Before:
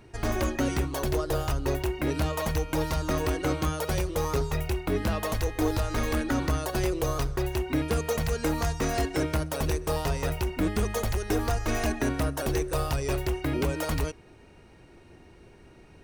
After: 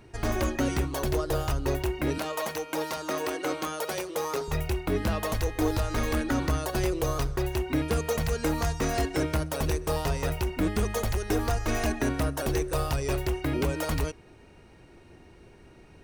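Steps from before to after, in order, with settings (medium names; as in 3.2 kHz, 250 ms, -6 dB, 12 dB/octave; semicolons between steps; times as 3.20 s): 2.18–4.48 s: high-pass 330 Hz 12 dB/octave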